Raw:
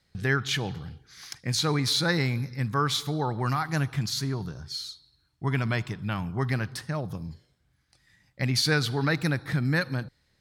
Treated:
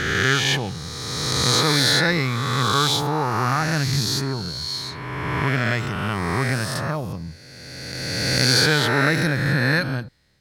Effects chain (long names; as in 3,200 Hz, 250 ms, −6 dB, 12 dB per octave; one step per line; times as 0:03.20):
peak hold with a rise ahead of every peak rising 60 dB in 2.22 s
level +2.5 dB